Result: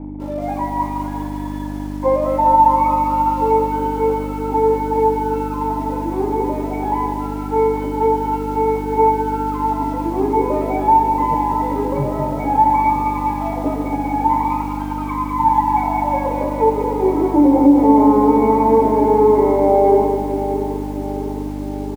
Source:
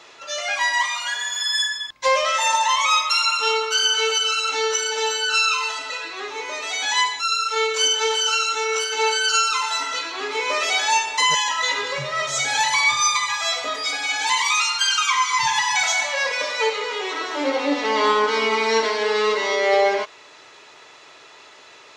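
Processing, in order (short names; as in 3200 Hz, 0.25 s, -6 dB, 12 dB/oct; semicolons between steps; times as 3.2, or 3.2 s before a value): high shelf 2200 Hz -3.5 dB; notches 60/120/180/240/300/360/420/480 Hz; in parallel at -1.5 dB: compressor 6:1, threshold -30 dBFS, peak gain reduction 15.5 dB; on the sum: bit-crush 6-bit; buzz 50 Hz, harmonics 6, -41 dBFS -4 dB/oct; vocal tract filter u; feedback echo 0.658 s, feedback 59%, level -14.5 dB; on a send at -21 dB: reverb RT60 0.75 s, pre-delay 3 ms; on the sum: maximiser +25 dB; lo-fi delay 0.2 s, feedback 55%, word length 6-bit, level -7 dB; gain -4 dB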